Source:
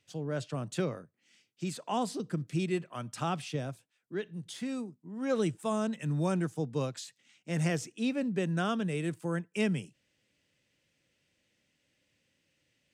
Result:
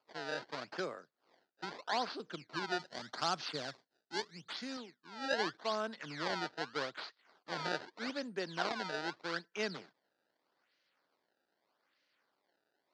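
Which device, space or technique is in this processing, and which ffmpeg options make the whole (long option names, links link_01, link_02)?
circuit-bent sampling toy: -filter_complex "[0:a]acrusher=samples=23:mix=1:aa=0.000001:lfo=1:lforange=36.8:lforate=0.81,highpass=460,equalizer=frequency=520:width_type=q:width=4:gain=-3,equalizer=frequency=1500:width_type=q:width=4:gain=5,equalizer=frequency=2600:width_type=q:width=4:gain=-4,equalizer=frequency=4500:width_type=q:width=4:gain=7,lowpass=frequency=5200:width=0.5412,lowpass=frequency=5200:width=1.3066,asettb=1/sr,asplit=3[link_01][link_02][link_03];[link_01]atrim=end=2.794[link_04];[link_02]atrim=start=2.79:end=4.77,asetpts=PTS-STARTPTS,afade=type=in:duration=0.004:curve=qsin,afade=type=out:start_time=1.976:duration=0.004:curve=qsin,bass=frequency=250:gain=6,treble=frequency=4000:gain=9[link_05];[link_03]atrim=start=4.766[link_06];[link_04][link_05]acrossfade=duration=0.004:curve1=hsin:curve2=qsin[link_07];[link_07][link_06]acrossfade=duration=0.004:curve1=qsin:curve2=hsin,volume=-1.5dB"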